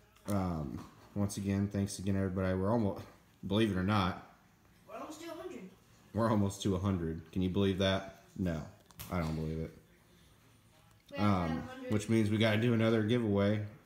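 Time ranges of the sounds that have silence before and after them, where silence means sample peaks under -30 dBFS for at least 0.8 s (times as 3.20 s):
6.16–9.65 s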